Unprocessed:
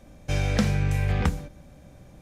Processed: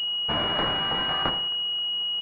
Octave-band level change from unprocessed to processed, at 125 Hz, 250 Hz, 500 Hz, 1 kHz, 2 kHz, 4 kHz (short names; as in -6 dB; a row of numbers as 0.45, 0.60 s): -15.5, -7.0, +0.5, +7.5, +2.5, +20.5 dB